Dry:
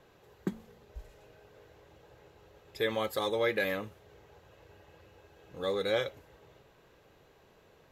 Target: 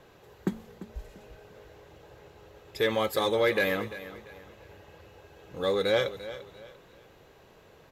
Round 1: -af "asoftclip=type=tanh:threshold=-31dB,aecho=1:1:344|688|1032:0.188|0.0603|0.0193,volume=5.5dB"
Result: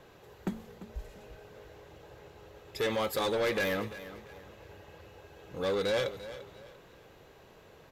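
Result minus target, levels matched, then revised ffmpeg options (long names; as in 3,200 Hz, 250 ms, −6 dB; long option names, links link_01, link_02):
soft clipping: distortion +14 dB
-af "asoftclip=type=tanh:threshold=-19.5dB,aecho=1:1:344|688|1032:0.188|0.0603|0.0193,volume=5.5dB"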